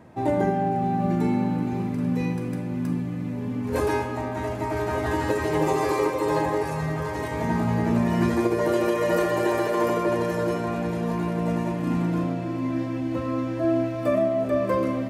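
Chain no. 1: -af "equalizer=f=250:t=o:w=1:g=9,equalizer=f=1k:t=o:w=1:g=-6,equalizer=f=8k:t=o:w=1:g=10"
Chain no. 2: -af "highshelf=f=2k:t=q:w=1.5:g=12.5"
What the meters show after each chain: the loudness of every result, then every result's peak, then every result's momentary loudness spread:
-21.0, -24.5 LUFS; -6.5, -8.5 dBFS; 7, 6 LU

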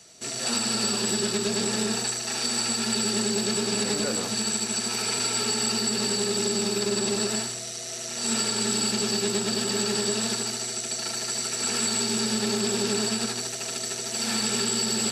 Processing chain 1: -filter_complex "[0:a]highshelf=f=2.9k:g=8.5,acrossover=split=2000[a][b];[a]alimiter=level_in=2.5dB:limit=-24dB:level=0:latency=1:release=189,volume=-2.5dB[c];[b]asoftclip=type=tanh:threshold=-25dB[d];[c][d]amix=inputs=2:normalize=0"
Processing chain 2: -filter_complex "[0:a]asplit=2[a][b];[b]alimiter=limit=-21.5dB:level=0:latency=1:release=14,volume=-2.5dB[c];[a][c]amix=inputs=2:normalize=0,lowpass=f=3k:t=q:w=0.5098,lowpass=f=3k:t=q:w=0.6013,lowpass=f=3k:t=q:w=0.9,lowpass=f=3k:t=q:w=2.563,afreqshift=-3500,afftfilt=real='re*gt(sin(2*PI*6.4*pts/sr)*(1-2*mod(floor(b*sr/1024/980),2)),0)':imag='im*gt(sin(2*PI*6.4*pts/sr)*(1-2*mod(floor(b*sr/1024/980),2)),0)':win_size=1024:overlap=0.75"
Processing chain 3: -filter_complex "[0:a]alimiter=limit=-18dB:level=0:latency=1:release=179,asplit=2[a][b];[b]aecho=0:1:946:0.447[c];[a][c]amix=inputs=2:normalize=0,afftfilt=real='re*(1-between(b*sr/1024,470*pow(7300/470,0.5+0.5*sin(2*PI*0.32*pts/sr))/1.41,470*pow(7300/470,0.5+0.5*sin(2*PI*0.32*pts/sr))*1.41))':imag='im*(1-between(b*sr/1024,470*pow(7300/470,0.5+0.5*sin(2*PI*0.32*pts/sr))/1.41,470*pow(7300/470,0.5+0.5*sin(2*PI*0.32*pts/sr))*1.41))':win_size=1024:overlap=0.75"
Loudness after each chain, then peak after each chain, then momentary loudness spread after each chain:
-24.5, -27.5, -27.5 LUFS; -19.5, -15.0, -15.5 dBFS; 2, 9, 4 LU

